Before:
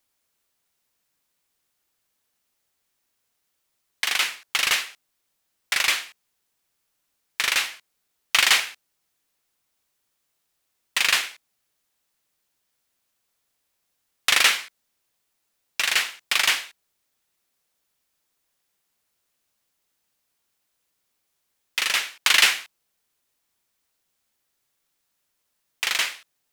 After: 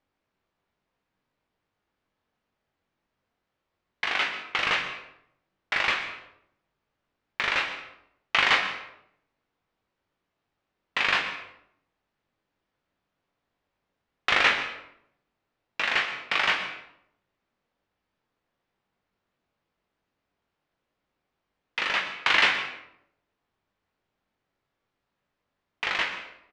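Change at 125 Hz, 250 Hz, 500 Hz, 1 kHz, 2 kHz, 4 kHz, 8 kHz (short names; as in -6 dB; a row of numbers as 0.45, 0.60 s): n/a, +5.5 dB, +4.5 dB, +2.0 dB, -1.5 dB, -6.5 dB, -19.5 dB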